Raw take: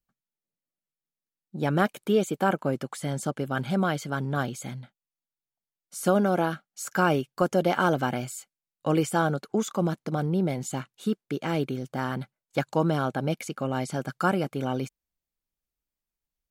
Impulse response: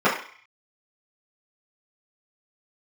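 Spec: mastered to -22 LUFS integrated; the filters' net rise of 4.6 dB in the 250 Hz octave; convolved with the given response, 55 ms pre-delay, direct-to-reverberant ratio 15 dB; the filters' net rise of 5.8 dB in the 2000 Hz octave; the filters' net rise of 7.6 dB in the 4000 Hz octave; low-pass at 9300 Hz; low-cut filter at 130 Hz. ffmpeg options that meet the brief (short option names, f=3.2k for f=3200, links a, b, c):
-filter_complex "[0:a]highpass=130,lowpass=9.3k,equalizer=f=250:t=o:g=7,equalizer=f=2k:t=o:g=7,equalizer=f=4k:t=o:g=7.5,asplit=2[a][b];[1:a]atrim=start_sample=2205,adelay=55[c];[b][c]afir=irnorm=-1:irlink=0,volume=-35.5dB[d];[a][d]amix=inputs=2:normalize=0,volume=2.5dB"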